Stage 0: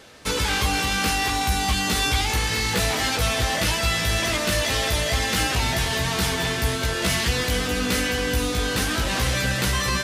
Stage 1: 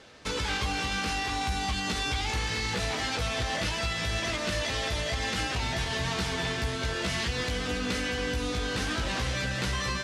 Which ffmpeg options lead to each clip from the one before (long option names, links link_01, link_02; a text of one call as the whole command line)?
ffmpeg -i in.wav -af "lowpass=6600,alimiter=limit=-16dB:level=0:latency=1:release=153,volume=-4.5dB" out.wav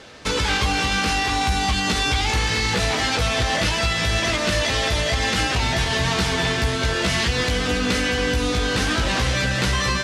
ffmpeg -i in.wav -af "acontrast=69,volume=2.5dB" out.wav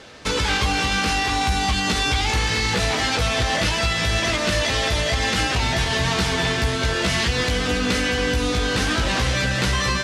ffmpeg -i in.wav -af anull out.wav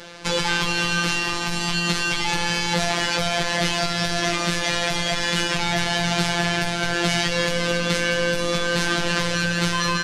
ffmpeg -i in.wav -filter_complex "[0:a]asplit=2[link_01][link_02];[link_02]alimiter=limit=-20.5dB:level=0:latency=1,volume=0.5dB[link_03];[link_01][link_03]amix=inputs=2:normalize=0,afftfilt=real='hypot(re,im)*cos(PI*b)':imag='0':win_size=1024:overlap=0.75" out.wav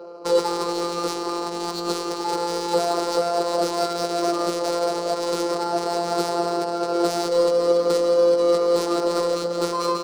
ffmpeg -i in.wav -af "highpass=frequency=420:width_type=q:width=4.9,afftfilt=real='re*(1-between(b*sr/4096,1500,3900))':imag='im*(1-between(b*sr/4096,1500,3900))':win_size=4096:overlap=0.75,adynamicsmooth=sensitivity=2.5:basefreq=1500" out.wav